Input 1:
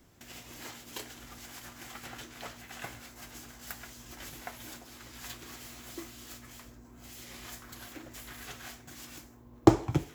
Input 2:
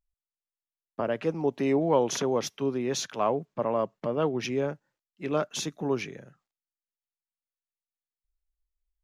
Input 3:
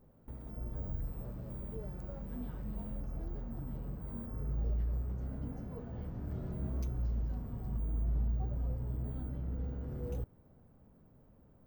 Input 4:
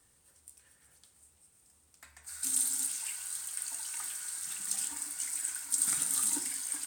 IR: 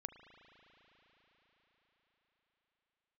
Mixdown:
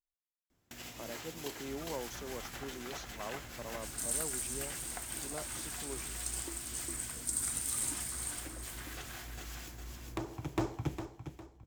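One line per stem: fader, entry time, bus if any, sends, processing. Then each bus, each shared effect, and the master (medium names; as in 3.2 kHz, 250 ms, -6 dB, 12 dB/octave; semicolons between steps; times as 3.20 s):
+1.0 dB, 0.50 s, bus A, send -16.5 dB, echo send -7 dB, hard clipper -20.5 dBFS, distortion -3 dB
-17.5 dB, 0.00 s, no bus, no send, no echo send, none
-12.5 dB, 1.40 s, bus A, no send, echo send -10.5 dB, resonances exaggerated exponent 1.5
-5.5 dB, 1.55 s, no bus, no send, echo send -9.5 dB, none
bus A: 0.0 dB, gate with hold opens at -42 dBFS; compression 5:1, threshold -43 dBFS, peak gain reduction 18.5 dB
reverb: on, RT60 5.5 s, pre-delay 36 ms
echo: feedback delay 406 ms, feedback 34%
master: none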